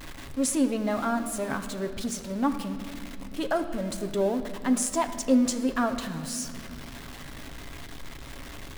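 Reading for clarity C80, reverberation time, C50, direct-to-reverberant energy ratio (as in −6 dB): 11.0 dB, 2.3 s, 10.0 dB, 6.0 dB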